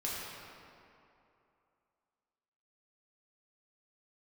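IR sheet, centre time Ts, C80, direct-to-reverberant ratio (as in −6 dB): 154 ms, −1.0 dB, −7.0 dB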